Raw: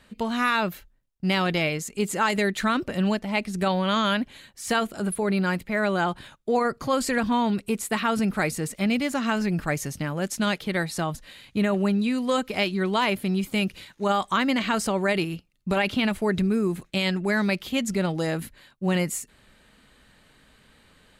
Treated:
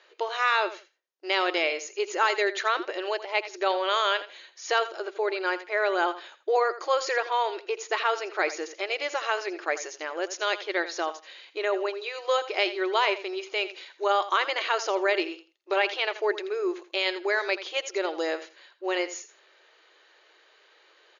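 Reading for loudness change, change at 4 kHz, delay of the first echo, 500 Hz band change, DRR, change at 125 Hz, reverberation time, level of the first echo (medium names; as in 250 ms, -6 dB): -2.0 dB, 0.0 dB, 83 ms, 0.0 dB, no reverb, under -40 dB, no reverb, -14.0 dB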